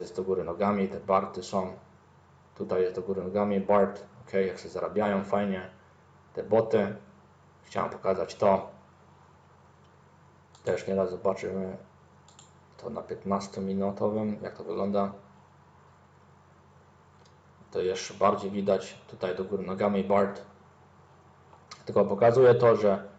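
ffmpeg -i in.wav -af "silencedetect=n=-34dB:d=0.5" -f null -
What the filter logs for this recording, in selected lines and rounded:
silence_start: 1.71
silence_end: 2.60 | silence_duration: 0.89
silence_start: 5.65
silence_end: 6.37 | silence_duration: 0.73
silence_start: 6.97
silence_end: 7.72 | silence_duration: 0.75
silence_start: 8.66
silence_end: 10.67 | silence_duration: 2.00
silence_start: 11.75
silence_end: 12.85 | silence_duration: 1.09
silence_start: 15.10
silence_end: 17.75 | silence_duration: 2.65
silence_start: 20.38
silence_end: 21.72 | silence_duration: 1.33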